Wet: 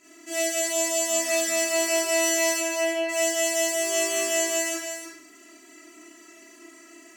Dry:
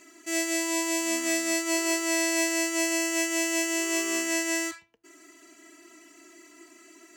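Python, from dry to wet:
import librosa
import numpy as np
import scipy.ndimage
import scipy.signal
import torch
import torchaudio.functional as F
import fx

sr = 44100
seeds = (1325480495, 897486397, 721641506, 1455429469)

y = fx.low_shelf(x, sr, hz=320.0, db=-6.0, at=(0.85, 1.62))
y = fx.lowpass(y, sr, hz=3200.0, slope=24, at=(2.56, 3.08), fade=0.02)
y = y + 10.0 ** (-7.5 / 20.0) * np.pad(y, (int(312 * sr / 1000.0), 0))[:len(y)]
y = fx.rev_schroeder(y, sr, rt60_s=0.55, comb_ms=26, drr_db=-8.5)
y = y * librosa.db_to_amplitude(-6.0)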